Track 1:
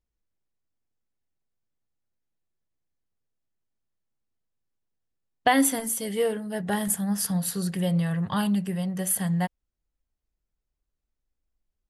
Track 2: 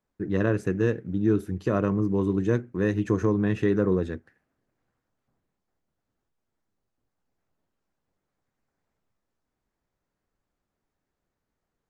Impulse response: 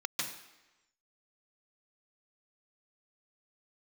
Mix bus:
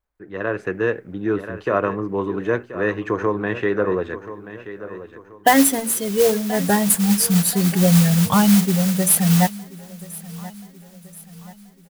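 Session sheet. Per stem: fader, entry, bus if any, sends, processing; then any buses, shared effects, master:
+0.5 dB, 0.00 s, no send, echo send -20.5 dB, spectral gate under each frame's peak -20 dB strong; modulation noise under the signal 11 dB
-0.5 dB, 0.00 s, no send, echo send -13.5 dB, three-band isolator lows -16 dB, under 470 Hz, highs -17 dB, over 3300 Hz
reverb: off
echo: feedback echo 1.031 s, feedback 46%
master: AGC gain up to 11 dB

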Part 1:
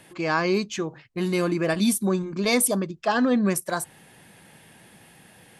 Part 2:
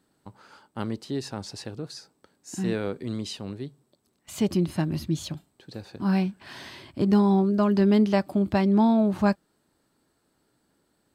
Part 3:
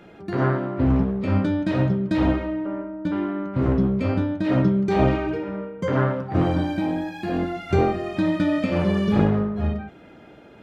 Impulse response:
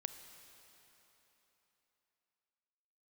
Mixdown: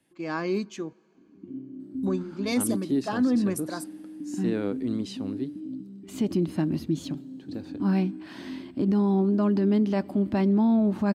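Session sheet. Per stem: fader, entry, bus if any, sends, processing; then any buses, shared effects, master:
-10.5 dB, 0.00 s, muted 0.93–2.03, send -16.5 dB, three-band expander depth 40%
-5.0 dB, 1.80 s, send -12.5 dB, tone controls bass -2 dB, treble -3 dB
-11.0 dB, 1.15 s, no send, band shelf 1400 Hz -9 dB; compressor 4:1, threshold -29 dBFS, peak gain reduction 13.5 dB; vocal tract filter i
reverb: on, RT60 3.7 s, pre-delay 28 ms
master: bell 270 Hz +11.5 dB 0.87 oct; limiter -16.5 dBFS, peak gain reduction 7 dB

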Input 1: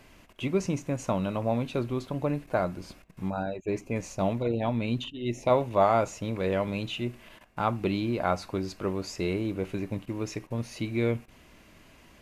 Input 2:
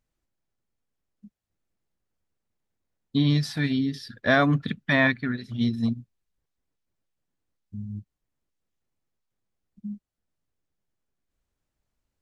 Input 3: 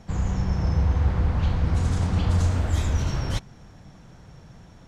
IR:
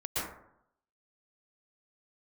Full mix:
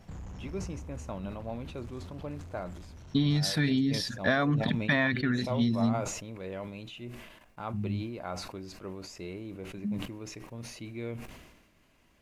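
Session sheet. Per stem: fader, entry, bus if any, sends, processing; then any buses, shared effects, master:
-11.5 dB, 0.00 s, bus A, no send, dry
+1.5 dB, 0.00 s, bus A, no send, dry
-8.5 dB, 0.00 s, no bus, no send, soft clip -25.5 dBFS, distortion -9 dB; compressor 2.5:1, threshold -32 dBFS, peak gain reduction 4 dB; auto duck -8 dB, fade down 1.75 s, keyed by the first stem
bus A: 0.0 dB, compressor 6:1, threshold -23 dBFS, peak gain reduction 9.5 dB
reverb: off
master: sustainer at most 50 dB/s

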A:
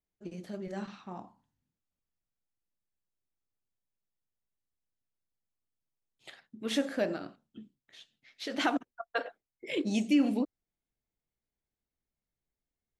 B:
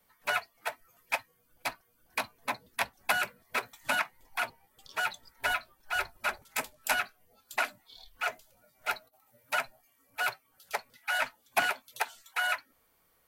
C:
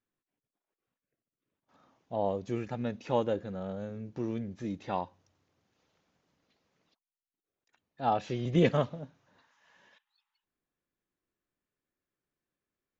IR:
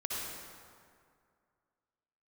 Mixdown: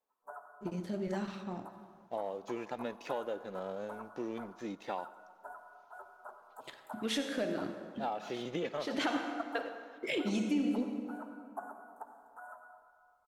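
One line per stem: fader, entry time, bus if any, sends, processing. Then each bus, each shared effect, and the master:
+1.5 dB, 0.40 s, bus A, send -11 dB, rotary speaker horn 1 Hz
-15.0 dB, 0.00 s, no bus, send -6 dB, inverse Chebyshev band-stop 2100–4900 Hz, stop band 50 dB; three-band isolator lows -22 dB, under 290 Hz, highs -18 dB, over 4400 Hz
-2.5 dB, 0.00 s, bus A, send -23 dB, HPF 340 Hz 12 dB/oct
bus A: 0.0 dB, sample leveller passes 1; compressor 12:1, threshold -34 dBFS, peak gain reduction 14 dB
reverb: on, RT60 2.2 s, pre-delay 53 ms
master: dry

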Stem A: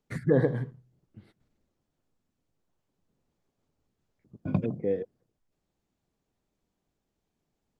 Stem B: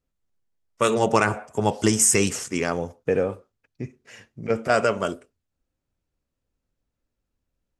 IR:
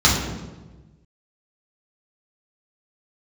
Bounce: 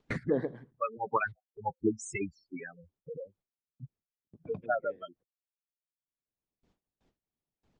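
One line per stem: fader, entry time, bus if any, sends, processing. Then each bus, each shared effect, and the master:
+2.5 dB, 0.00 s, no send, gate -58 dBFS, range -50 dB; upward compressor, threshold -29 dBFS; auto duck -17 dB, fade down 0.70 s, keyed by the second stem
-2.5 dB, 0.00 s, no send, per-bin expansion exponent 3; LPF 2700 Hz 6 dB/oct; spectral gate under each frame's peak -15 dB strong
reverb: off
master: LPF 4800 Hz 12 dB/oct; gate with hold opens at -60 dBFS; harmonic-percussive split harmonic -12 dB

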